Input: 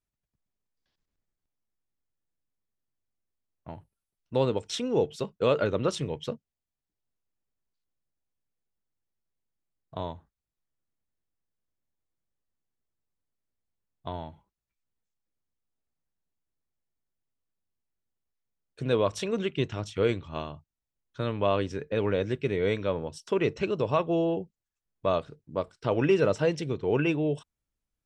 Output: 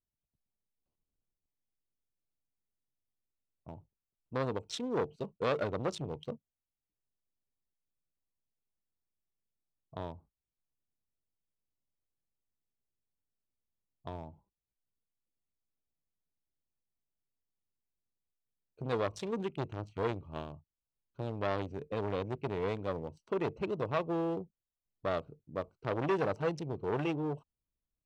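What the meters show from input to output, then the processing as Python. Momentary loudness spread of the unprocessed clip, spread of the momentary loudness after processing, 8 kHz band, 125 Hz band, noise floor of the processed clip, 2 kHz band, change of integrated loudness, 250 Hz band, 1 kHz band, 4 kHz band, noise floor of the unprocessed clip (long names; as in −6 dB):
14 LU, 14 LU, −9.5 dB, −7.0 dB, below −85 dBFS, −7.0 dB, −7.5 dB, −7.5 dB, −4.5 dB, −9.0 dB, below −85 dBFS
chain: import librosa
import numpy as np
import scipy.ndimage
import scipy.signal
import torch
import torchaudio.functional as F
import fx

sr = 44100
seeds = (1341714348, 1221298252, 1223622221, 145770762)

y = fx.wiener(x, sr, points=25)
y = fx.transformer_sat(y, sr, knee_hz=1100.0)
y = y * librosa.db_to_amplitude(-4.5)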